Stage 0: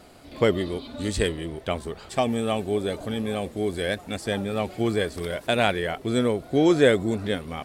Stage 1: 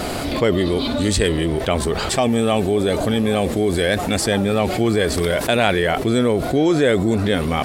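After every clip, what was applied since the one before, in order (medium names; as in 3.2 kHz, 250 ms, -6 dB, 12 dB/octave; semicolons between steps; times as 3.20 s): level flattener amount 70%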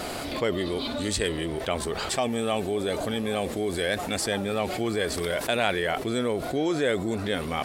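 bass shelf 310 Hz -7 dB; trim -6.5 dB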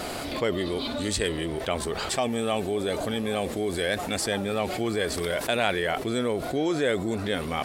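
no audible change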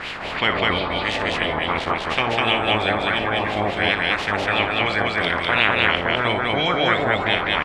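spectral peaks clipped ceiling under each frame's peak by 22 dB; LFO low-pass sine 2.9 Hz 690–3000 Hz; loudspeakers at several distances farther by 20 m -11 dB, 69 m -1 dB; trim +2.5 dB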